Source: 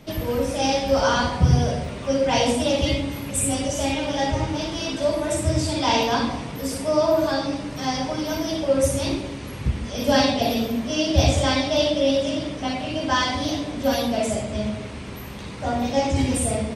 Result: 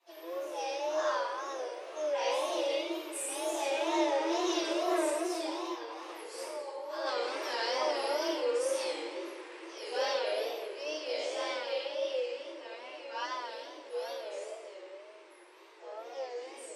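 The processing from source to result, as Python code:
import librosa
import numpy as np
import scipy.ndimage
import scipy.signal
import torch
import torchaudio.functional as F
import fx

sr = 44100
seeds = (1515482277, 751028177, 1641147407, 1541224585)

y = fx.doppler_pass(x, sr, speed_mps=22, closest_m=2.9, pass_at_s=6.1)
y = fx.over_compress(y, sr, threshold_db=-46.0, ratio=-1.0)
y = y + 10.0 ** (-14.0 / 20.0) * np.pad(y, (int(223 * sr / 1000.0), 0))[:len(y)]
y = fx.room_shoebox(y, sr, seeds[0], volume_m3=770.0, walls='mixed', distance_m=8.9)
y = fx.wow_flutter(y, sr, seeds[1], rate_hz=2.1, depth_cents=110.0)
y = scipy.signal.sosfilt(scipy.signal.cheby1(6, 3, 330.0, 'highpass', fs=sr, output='sos'), y)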